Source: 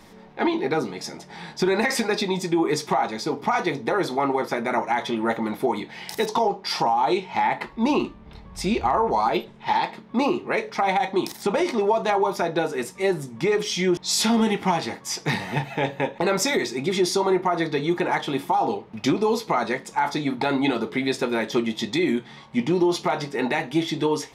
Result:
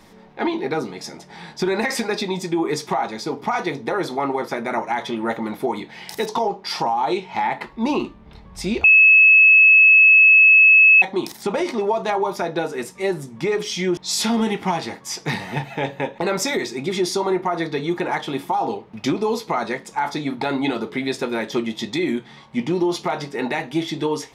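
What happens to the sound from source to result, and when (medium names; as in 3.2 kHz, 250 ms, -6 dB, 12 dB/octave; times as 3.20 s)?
8.84–11.02 s: bleep 2.59 kHz -7.5 dBFS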